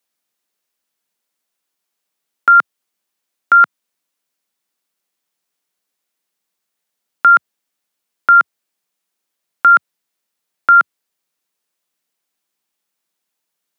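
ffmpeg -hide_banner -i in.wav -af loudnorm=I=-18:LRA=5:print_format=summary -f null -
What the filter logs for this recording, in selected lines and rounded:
Input Integrated:    -11.8 LUFS
Input True Peak:      -2.4 dBTP
Input LRA:             4.8 LU
Input Threshold:     -21.9 LUFS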